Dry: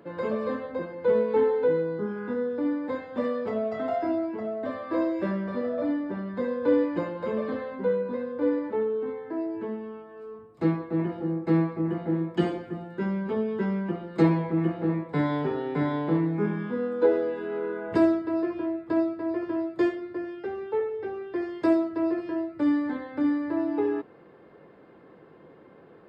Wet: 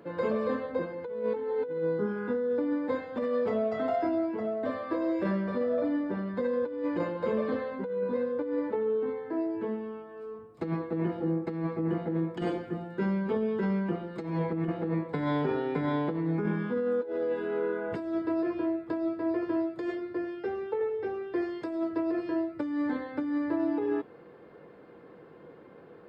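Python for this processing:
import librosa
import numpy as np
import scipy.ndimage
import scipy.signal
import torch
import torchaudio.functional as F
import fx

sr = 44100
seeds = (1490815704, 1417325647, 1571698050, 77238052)

y = fx.comb_fb(x, sr, f0_hz=480.0, decay_s=0.25, harmonics='odd', damping=0.0, mix_pct=70)
y = fx.over_compress(y, sr, threshold_db=-37.0, ratio=-1.0)
y = F.gain(torch.from_numpy(y), 8.0).numpy()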